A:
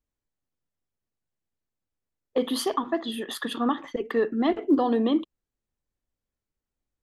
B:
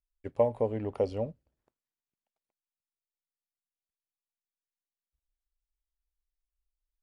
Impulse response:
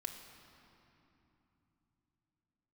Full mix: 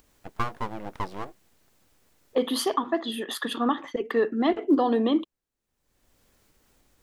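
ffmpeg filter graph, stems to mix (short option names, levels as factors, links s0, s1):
-filter_complex "[0:a]acompressor=mode=upward:threshold=0.00891:ratio=2.5,volume=1.19[s0];[1:a]highpass=f=67:w=0.5412,highpass=f=67:w=1.3066,aeval=exprs='abs(val(0))':c=same,volume=1.19[s1];[s0][s1]amix=inputs=2:normalize=0,lowshelf=f=160:g=-6.5"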